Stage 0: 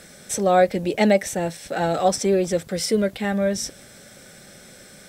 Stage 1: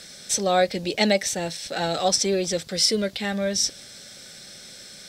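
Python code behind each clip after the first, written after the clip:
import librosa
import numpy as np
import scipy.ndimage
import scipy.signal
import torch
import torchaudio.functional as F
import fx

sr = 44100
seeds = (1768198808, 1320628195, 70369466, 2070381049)

y = fx.peak_eq(x, sr, hz=4500.0, db=14.5, octaves=1.5)
y = y * 10.0 ** (-4.5 / 20.0)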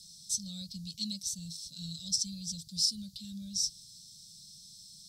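y = scipy.signal.sosfilt(scipy.signal.ellip(3, 1.0, 40, [170.0, 4300.0], 'bandstop', fs=sr, output='sos'), x)
y = y * 10.0 ** (-7.5 / 20.0)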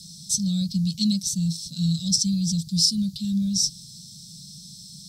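y = fx.peak_eq(x, sr, hz=170.0, db=12.0, octaves=1.4)
y = y * 10.0 ** (8.5 / 20.0)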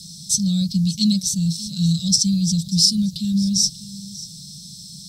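y = x + 10.0 ** (-17.5 / 20.0) * np.pad(x, (int(588 * sr / 1000.0), 0))[:len(x)]
y = y * 10.0 ** (4.5 / 20.0)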